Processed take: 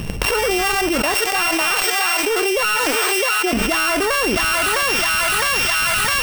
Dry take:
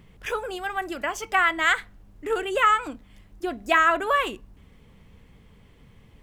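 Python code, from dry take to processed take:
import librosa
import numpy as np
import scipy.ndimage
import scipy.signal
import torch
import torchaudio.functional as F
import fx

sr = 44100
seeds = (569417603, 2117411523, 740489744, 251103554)

y = np.r_[np.sort(x[:len(x) // 16 * 16].reshape(-1, 16), axis=1).ravel(), x[len(x) // 16 * 16:]]
y = fx.highpass(y, sr, hz=350.0, slope=24, at=(1.14, 3.53))
y = fx.leveller(y, sr, passes=3)
y = fx.echo_thinned(y, sr, ms=659, feedback_pct=75, hz=700.0, wet_db=-19.5)
y = fx.env_flatten(y, sr, amount_pct=100)
y = F.gain(torch.from_numpy(y), -8.5).numpy()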